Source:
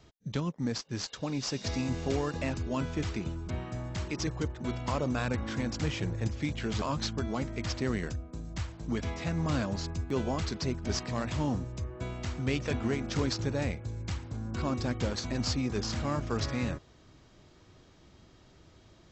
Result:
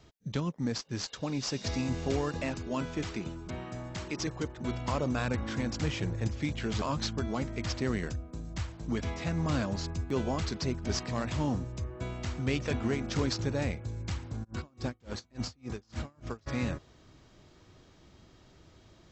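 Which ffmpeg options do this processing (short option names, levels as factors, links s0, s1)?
-filter_complex "[0:a]asettb=1/sr,asplit=3[s0][s1][s2];[s0]atrim=end=2.404[s3];[s1]atrim=start=2.4:end=4.58,asetpts=PTS-STARTPTS,afade=t=in:d=0.004:c=qsin,afade=t=out:st=2.176:d=0.004:c=qsin,equalizer=f=70:w=0.85:g=-8.5[s4];[s2]atrim=start=4.576[s5];[s3][s4]acrossfade=d=0.004:c1=hsin:c2=qsin[s6];[s6][s5]acrossfade=d=0.004:c1=qsin:c2=hsin,asplit=3[s7][s8][s9];[s7]afade=t=out:st=14.43:d=0.02[s10];[s8]aeval=exprs='val(0)*pow(10,-36*(0.5-0.5*cos(2*PI*3.5*n/s))/20)':c=same,afade=t=in:st=14.43:d=0.02,afade=t=out:st=16.46:d=0.02[s11];[s9]afade=t=in:st=16.46:d=0.02[s12];[s10][s11][s12]amix=inputs=3:normalize=0"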